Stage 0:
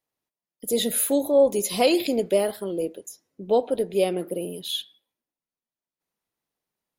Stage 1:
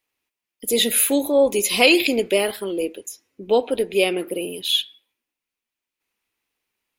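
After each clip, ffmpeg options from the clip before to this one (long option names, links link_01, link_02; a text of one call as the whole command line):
ffmpeg -i in.wav -af "equalizer=frequency=160:width_type=o:width=0.67:gain=-11,equalizer=frequency=630:width_type=o:width=0.67:gain=-6,equalizer=frequency=2500:width_type=o:width=0.67:gain=10,volume=5.5dB" out.wav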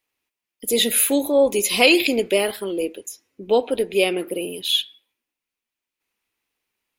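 ffmpeg -i in.wav -af anull out.wav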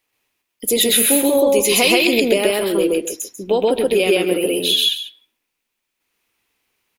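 ffmpeg -i in.wav -af "acompressor=threshold=-20dB:ratio=6,aecho=1:1:128.3|271.1:1|0.251,volume=6dB" out.wav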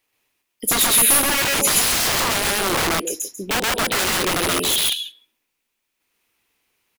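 ffmpeg -i in.wav -filter_complex "[0:a]acrossover=split=4700[link_01][link_02];[link_01]aeval=exprs='(mod(5.96*val(0)+1,2)-1)/5.96':channel_layout=same[link_03];[link_02]asplit=2[link_04][link_05];[link_05]adelay=28,volume=-4.5dB[link_06];[link_04][link_06]amix=inputs=2:normalize=0[link_07];[link_03][link_07]amix=inputs=2:normalize=0" out.wav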